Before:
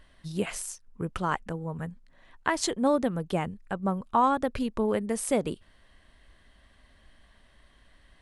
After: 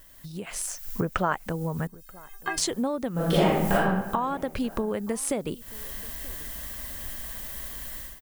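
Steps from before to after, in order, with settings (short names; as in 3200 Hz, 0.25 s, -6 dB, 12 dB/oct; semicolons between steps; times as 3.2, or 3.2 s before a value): added noise violet -55 dBFS; 1.87–2.58 metallic resonator 380 Hz, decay 0.21 s, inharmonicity 0.008; compressor 10:1, threshold -42 dBFS, peak gain reduction 23 dB; 0.67–1.33 fifteen-band EQ 630 Hz +9 dB, 1600 Hz +7 dB, 4000 Hz -3 dB, 10000 Hz -6 dB; AGC gain up to 16.5 dB; 3.12–3.74 reverb throw, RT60 1.1 s, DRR -9.5 dB; outdoor echo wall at 160 m, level -22 dB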